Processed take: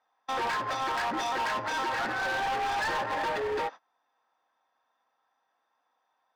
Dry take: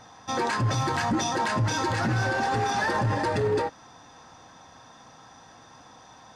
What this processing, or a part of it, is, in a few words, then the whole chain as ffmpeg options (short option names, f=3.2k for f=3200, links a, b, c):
walkie-talkie: -af "highpass=580,lowpass=2.9k,asoftclip=type=hard:threshold=-30dB,agate=range=-26dB:threshold=-43dB:ratio=16:detection=peak,volume=2.5dB"